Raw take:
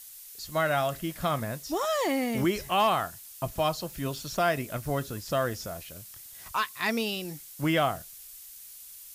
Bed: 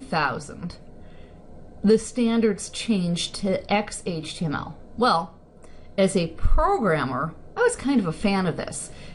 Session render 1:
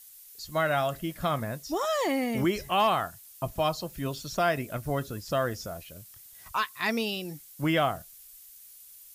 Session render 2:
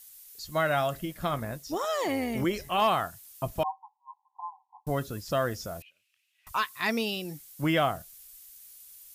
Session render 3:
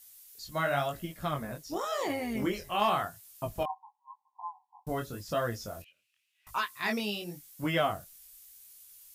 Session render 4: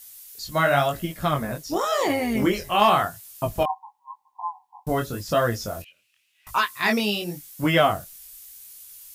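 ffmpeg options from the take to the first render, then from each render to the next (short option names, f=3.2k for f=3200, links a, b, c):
-af "afftdn=nr=6:nf=-47"
-filter_complex "[0:a]asettb=1/sr,asplit=3[a][b][c];[a]atrim=end=1.054[d];[b]atrim=start=1.05:end=2.82,asetpts=PTS-STARTPTS,afade=t=in:d=0.004:c=qsin,afade=t=out:st=1.766:d=0.004:c=qsin,tremolo=f=170:d=0.4[e];[c]atrim=start=2.816[f];[d][e]acrossfade=d=0.004:c1=hsin:c2=qsin[g];[g][f]acrossfade=d=0.004:c1=qsin:c2=hsin,asettb=1/sr,asplit=3[h][i][j];[h]atrim=end=3.634[k];[i]atrim=start=3.63:end=4.87,asetpts=PTS-STARTPTS,afade=t=in:d=0.004:c=qsin,afade=t=out:st=1.236:d=0.004:c=qsin,asuperpass=centerf=900:order=20:qfactor=2.9[l];[j]atrim=start=4.866[m];[k][l]acrossfade=d=0.004:c1=hsin:c2=qsin[n];[n][m]acrossfade=d=0.004:c1=qsin:c2=hsin,asettb=1/sr,asplit=3[o][p][q];[o]atrim=end=5.824[r];[p]atrim=start=5.82:end=6.47,asetpts=PTS-STARTPTS,afade=t=in:d=0.004:c=qsin,afade=t=out:st=0.646:d=0.004:c=qsin,bandpass=f=2.6k:t=q:w=6.7[s];[q]atrim=start=6.466[t];[r][s]acrossfade=d=0.004:c1=hsin:c2=qsin[u];[u][t]acrossfade=d=0.004:c1=qsin:c2=hsin"
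-af "flanger=delay=17:depth=7.4:speed=0.91"
-af "volume=9.5dB"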